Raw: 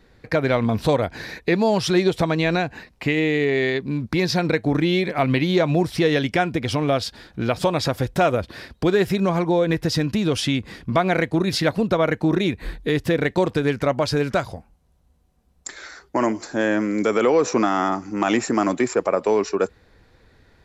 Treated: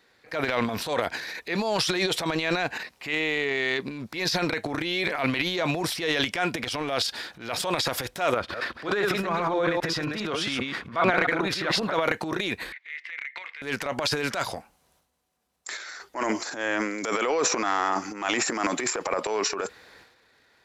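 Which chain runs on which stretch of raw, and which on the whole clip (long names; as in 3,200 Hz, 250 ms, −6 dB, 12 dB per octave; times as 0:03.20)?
0:08.34–0:11.94: delay that plays each chunk backwards 133 ms, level −3 dB + low-pass filter 2,400 Hz 6 dB per octave + parametric band 1,300 Hz +6.5 dB 0.56 octaves
0:12.72–0:13.62: high-pass with resonance 2,100 Hz, resonance Q 15 + head-to-tape spacing loss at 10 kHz 36 dB + downward compressor 3 to 1, threshold −32 dBFS
whole clip: high-pass filter 1,100 Hz 6 dB per octave; transient designer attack −8 dB, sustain +11 dB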